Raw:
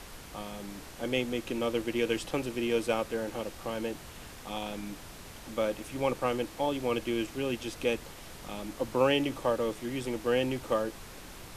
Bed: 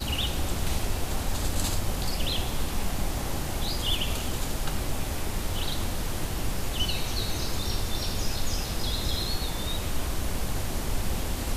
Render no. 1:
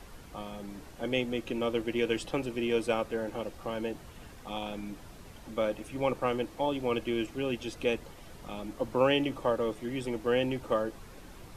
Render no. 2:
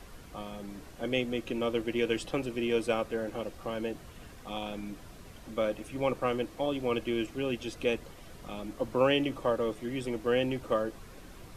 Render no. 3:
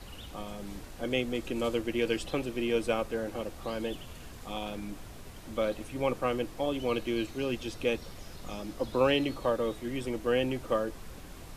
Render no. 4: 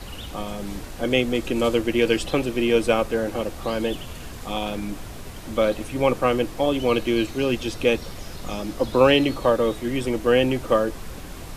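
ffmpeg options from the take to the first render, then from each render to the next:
-af "afftdn=nr=8:nf=-47"
-af "bandreject=f=870:w=12"
-filter_complex "[1:a]volume=-19.5dB[a];[0:a][a]amix=inputs=2:normalize=0"
-af "volume=9.5dB"

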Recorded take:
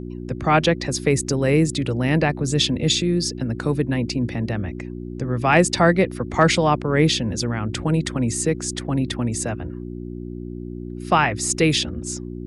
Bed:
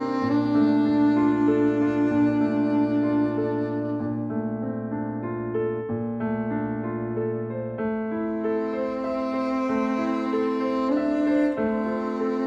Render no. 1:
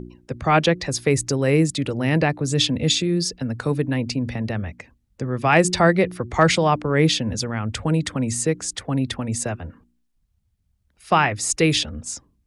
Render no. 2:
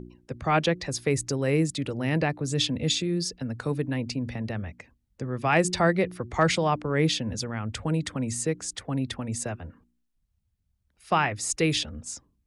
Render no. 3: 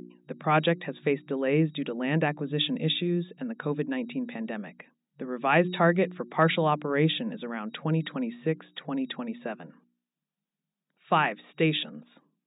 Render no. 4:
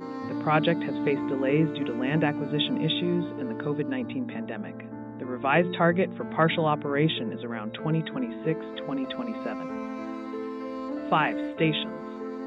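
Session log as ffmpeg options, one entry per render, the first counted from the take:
-af "bandreject=f=60:t=h:w=4,bandreject=f=120:t=h:w=4,bandreject=f=180:t=h:w=4,bandreject=f=240:t=h:w=4,bandreject=f=300:t=h:w=4,bandreject=f=360:t=h:w=4"
-af "volume=-6dB"
-af "bandreject=f=2.1k:w=29,afftfilt=real='re*between(b*sr/4096,150,3800)':imag='im*between(b*sr/4096,150,3800)':win_size=4096:overlap=0.75"
-filter_complex "[1:a]volume=-10dB[a];[0:a][a]amix=inputs=2:normalize=0"

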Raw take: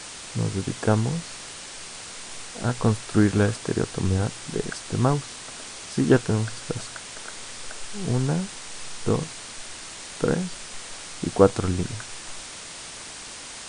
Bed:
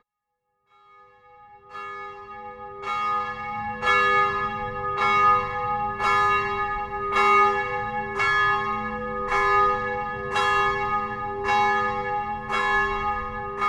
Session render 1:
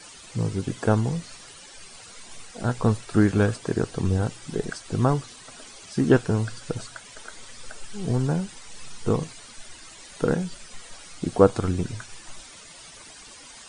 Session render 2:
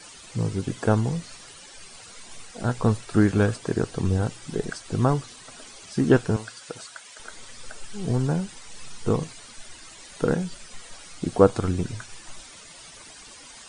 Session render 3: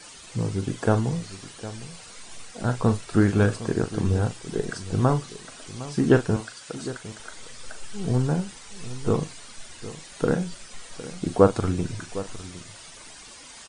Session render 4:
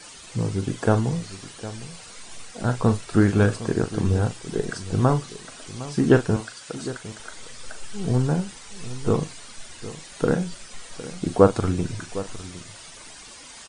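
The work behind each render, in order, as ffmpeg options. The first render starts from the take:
-af "afftdn=nr=12:nf=-39"
-filter_complex "[0:a]asettb=1/sr,asplit=3[a][b][c];[a]atrim=end=6.364[d];[b]atrim=start=6.36:end=7.2,asetpts=PTS-STARTPTS,afade=t=in:d=0.004:c=qsin,afade=t=out:st=0.836:d=0.004:c=qsin,highpass=f=780:p=1[e];[c]atrim=start=7.196[f];[d][e]acrossfade=d=0.004:c1=hsin:c2=qsin[g];[g][f]acrossfade=d=0.004:c1=qsin:c2=hsin"
-filter_complex "[0:a]asplit=2[a][b];[b]adelay=40,volume=-11dB[c];[a][c]amix=inputs=2:normalize=0,asplit=2[d][e];[e]adelay=758,volume=-15dB,highshelf=f=4k:g=-17.1[f];[d][f]amix=inputs=2:normalize=0"
-af "volume=1.5dB"

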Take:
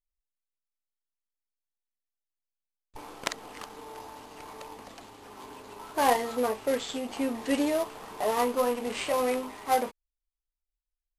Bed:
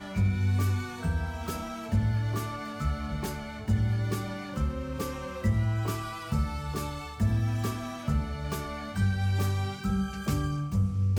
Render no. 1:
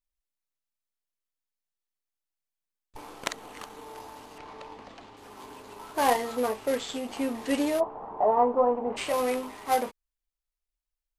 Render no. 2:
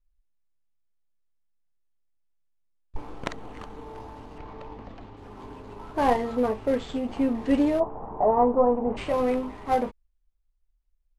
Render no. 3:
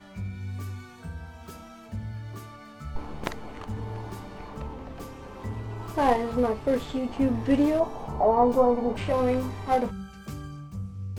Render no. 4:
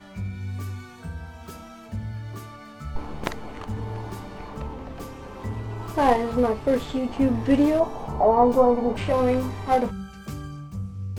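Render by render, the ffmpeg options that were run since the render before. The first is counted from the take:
-filter_complex "[0:a]asettb=1/sr,asplit=3[a][b][c];[a]atrim=end=3.244[d];[b]atrim=start=3.24:end=3.85,asetpts=PTS-STARTPTS,afade=t=in:d=0.004:c=qsin,afade=t=out:st=0.606:d=0.004:c=qsin,bandreject=f=5k:w=12[e];[c]atrim=start=3.846[f];[d][e]acrossfade=d=0.004:c1=hsin:c2=qsin[g];[g][f]acrossfade=d=0.004:c1=qsin:c2=hsin,asettb=1/sr,asplit=3[h][i][j];[h]atrim=end=4.384[k];[i]atrim=start=4.38:end=5.17,asetpts=PTS-STARTPTS,afade=t=in:d=0.004:c=qsin,afade=t=out:st=0.786:d=0.004:c=qsin,lowpass=4.5k[l];[j]atrim=start=5.166[m];[k][l]acrossfade=d=0.004:c1=hsin:c2=qsin[n];[n][m]acrossfade=d=0.004:c1=qsin:c2=hsin,asplit=3[o][p][q];[o]afade=t=out:st=7.79:d=0.02[r];[p]lowpass=f=830:t=q:w=2.4,afade=t=in:st=7.79:d=0.02,afade=t=out:st=8.96:d=0.02[s];[q]afade=t=in:st=8.96:d=0.02[t];[r][s][t]amix=inputs=3:normalize=0"
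-af "aemphasis=mode=reproduction:type=riaa"
-filter_complex "[1:a]volume=-9dB[a];[0:a][a]amix=inputs=2:normalize=0"
-af "volume=3dB"

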